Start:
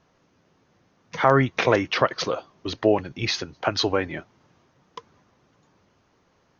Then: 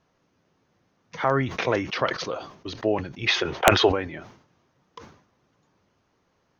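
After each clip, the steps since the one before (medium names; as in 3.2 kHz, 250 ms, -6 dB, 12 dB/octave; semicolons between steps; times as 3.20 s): time-frequency box 3.27–3.89 s, 330–3800 Hz +12 dB; integer overflow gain -4 dB; decay stretcher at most 97 dB/s; trim -5 dB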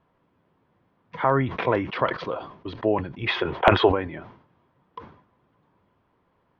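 distance through air 390 m; small resonant body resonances 990/3300 Hz, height 7 dB, ringing for 25 ms; trim +2 dB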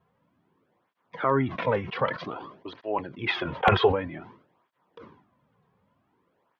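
cancelling through-zero flanger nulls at 0.53 Hz, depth 3.5 ms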